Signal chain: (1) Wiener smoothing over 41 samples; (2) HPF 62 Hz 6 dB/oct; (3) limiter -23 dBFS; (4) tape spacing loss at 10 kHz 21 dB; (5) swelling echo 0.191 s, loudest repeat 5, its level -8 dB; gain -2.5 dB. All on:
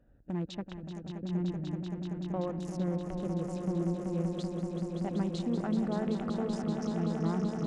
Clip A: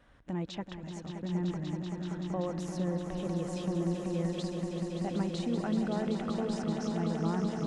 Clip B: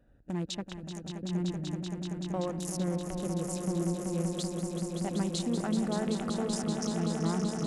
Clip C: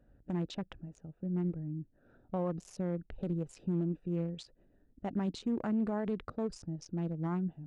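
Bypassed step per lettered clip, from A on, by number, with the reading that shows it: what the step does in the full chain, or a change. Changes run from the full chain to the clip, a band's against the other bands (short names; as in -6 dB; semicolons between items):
1, 4 kHz band +3.0 dB; 4, 4 kHz band +7.5 dB; 5, echo-to-direct 1.5 dB to none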